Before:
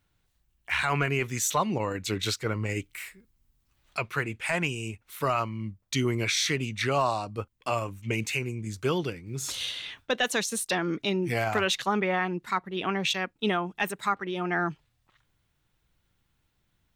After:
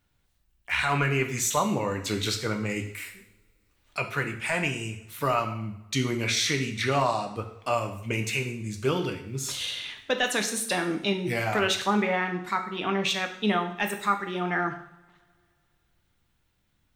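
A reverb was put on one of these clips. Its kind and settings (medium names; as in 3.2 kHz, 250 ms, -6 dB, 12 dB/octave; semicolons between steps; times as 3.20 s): two-slope reverb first 0.63 s, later 2.6 s, from -27 dB, DRR 4 dB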